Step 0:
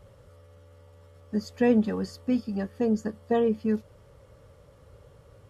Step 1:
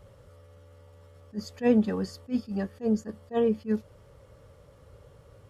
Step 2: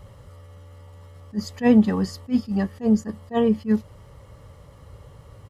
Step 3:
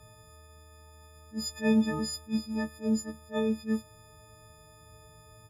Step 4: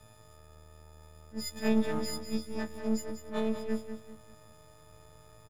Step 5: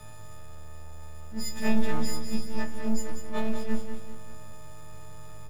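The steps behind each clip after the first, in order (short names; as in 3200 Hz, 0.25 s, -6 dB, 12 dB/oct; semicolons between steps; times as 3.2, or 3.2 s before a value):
attack slew limiter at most 330 dB/s
comb 1 ms, depth 39%; gain +6.5 dB
frequency quantiser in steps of 6 st; gain -9 dB
half-wave gain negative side -12 dB; on a send: feedback echo 0.193 s, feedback 36%, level -9 dB
G.711 law mismatch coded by mu; shoebox room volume 340 m³, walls furnished, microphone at 0.96 m; gain +2 dB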